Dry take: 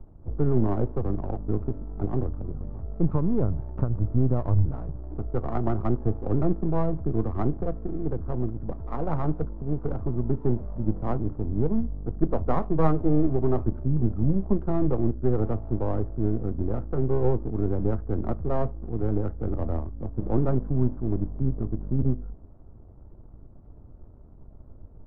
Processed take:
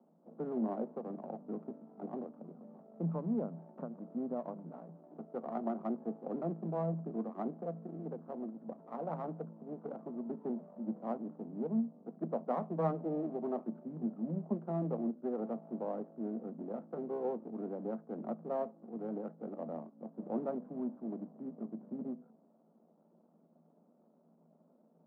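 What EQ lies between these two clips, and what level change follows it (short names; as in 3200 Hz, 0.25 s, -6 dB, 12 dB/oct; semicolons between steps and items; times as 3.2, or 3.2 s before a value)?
rippled Chebyshev high-pass 160 Hz, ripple 9 dB; -5.0 dB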